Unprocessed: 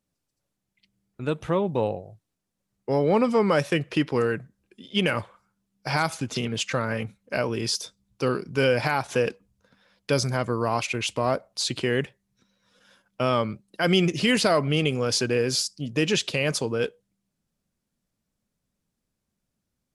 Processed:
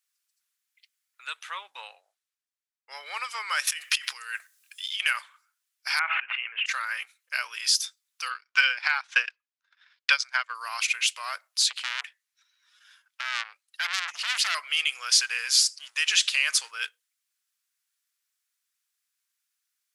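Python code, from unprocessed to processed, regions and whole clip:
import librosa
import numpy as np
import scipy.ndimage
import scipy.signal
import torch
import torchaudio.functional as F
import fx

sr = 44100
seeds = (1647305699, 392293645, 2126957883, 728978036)

y = fx.chain(x, sr, fx.high_shelf(hz=9800.0, db=-8.5),
    fx.band_widen(depth_pct=40), at=(1.26, 3.06))
y = fx.chain(y, sr, fx.high_shelf(hz=3600.0, db=10.0),
    fx.over_compress(threshold_db=-31.0, ratio=-1.0), at=(3.67, 5.0))
y = fx.chain(y, sr, fx.cheby1_lowpass(hz=2800.0, order=6),
    fx.sustainer(db_per_s=26.0), at=(5.99, 6.66))
y = fx.chain(y, sr, fx.highpass(hz=490.0, slope=12),
    fx.transient(attack_db=12, sustain_db=-11),
    fx.air_absorb(metres=130.0), at=(8.3, 10.55))
y = fx.chain(y, sr, fx.high_shelf(hz=6800.0, db=-6.5),
    fx.transformer_sat(knee_hz=3000.0), at=(11.66, 14.55))
y = fx.chain(y, sr, fx.law_mismatch(coded='mu'),
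    fx.resample_bad(factor=2, down='none', up='filtered'), at=(15.11, 16.71))
y = scipy.signal.sosfilt(scipy.signal.butter(4, 1400.0, 'highpass', fs=sr, output='sos'), y)
y = fx.high_shelf(y, sr, hz=11000.0, db=6.0)
y = F.gain(torch.from_numpy(y), 4.0).numpy()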